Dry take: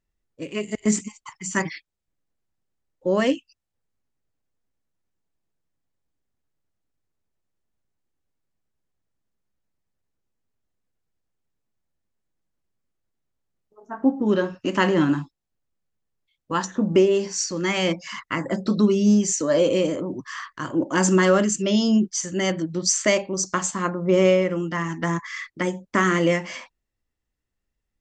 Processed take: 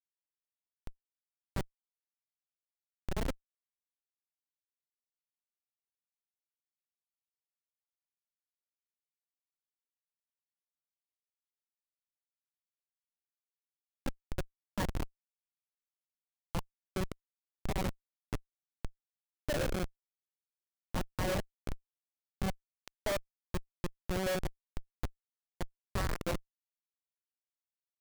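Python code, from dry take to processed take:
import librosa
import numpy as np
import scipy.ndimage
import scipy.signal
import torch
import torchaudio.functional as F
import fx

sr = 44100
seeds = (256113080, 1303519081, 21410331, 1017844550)

p1 = fx.cabinet(x, sr, low_hz=370.0, low_slope=12, high_hz=4400.0, hz=(370.0, 780.0, 1500.0, 2500.0), db=(-5, 7, -4, 5))
p2 = p1 + fx.echo_single(p1, sr, ms=127, db=-16.0, dry=0)
p3 = fx.schmitt(p2, sr, flips_db=-16.5)
y = p3 * 10.0 ** (-2.5 / 20.0)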